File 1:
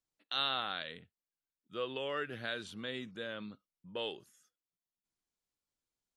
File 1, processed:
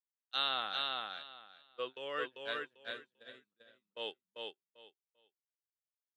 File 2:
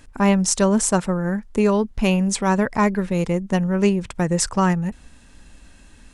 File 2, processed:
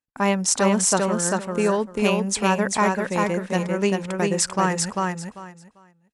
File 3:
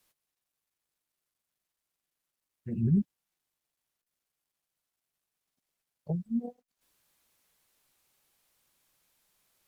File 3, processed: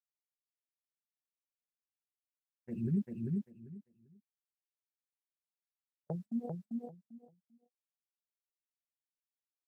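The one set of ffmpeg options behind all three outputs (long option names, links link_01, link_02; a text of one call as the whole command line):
ffmpeg -i in.wav -filter_complex "[0:a]agate=range=-39dB:threshold=-37dB:ratio=16:detection=peak,highpass=frequency=370:poles=1,asplit=2[link_01][link_02];[link_02]aecho=0:1:394|788|1182:0.708|0.135|0.0256[link_03];[link_01][link_03]amix=inputs=2:normalize=0" out.wav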